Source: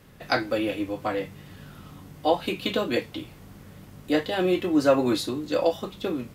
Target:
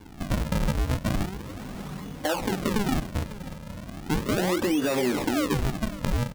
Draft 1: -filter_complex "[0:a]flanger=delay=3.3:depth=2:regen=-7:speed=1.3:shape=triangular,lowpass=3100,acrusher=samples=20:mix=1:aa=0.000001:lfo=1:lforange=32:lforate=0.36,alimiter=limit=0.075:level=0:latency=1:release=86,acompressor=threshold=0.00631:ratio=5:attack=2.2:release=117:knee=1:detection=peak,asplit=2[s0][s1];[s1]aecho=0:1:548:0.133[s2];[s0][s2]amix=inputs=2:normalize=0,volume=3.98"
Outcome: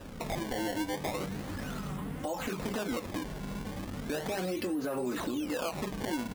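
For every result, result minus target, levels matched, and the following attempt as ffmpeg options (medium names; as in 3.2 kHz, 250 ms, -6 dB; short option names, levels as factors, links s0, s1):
compression: peak gain reduction +8 dB; decimation with a swept rate: distortion -9 dB
-filter_complex "[0:a]flanger=delay=3.3:depth=2:regen=-7:speed=1.3:shape=triangular,lowpass=3100,acrusher=samples=20:mix=1:aa=0.000001:lfo=1:lforange=32:lforate=0.36,alimiter=limit=0.075:level=0:latency=1:release=86,acompressor=threshold=0.0211:ratio=5:attack=2.2:release=117:knee=1:detection=peak,asplit=2[s0][s1];[s1]aecho=0:1:548:0.133[s2];[s0][s2]amix=inputs=2:normalize=0,volume=3.98"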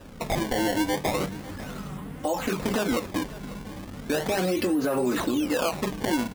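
decimation with a swept rate: distortion -9 dB
-filter_complex "[0:a]flanger=delay=3.3:depth=2:regen=-7:speed=1.3:shape=triangular,lowpass=3100,acrusher=samples=68:mix=1:aa=0.000001:lfo=1:lforange=109:lforate=0.36,alimiter=limit=0.075:level=0:latency=1:release=86,acompressor=threshold=0.0211:ratio=5:attack=2.2:release=117:knee=1:detection=peak,asplit=2[s0][s1];[s1]aecho=0:1:548:0.133[s2];[s0][s2]amix=inputs=2:normalize=0,volume=3.98"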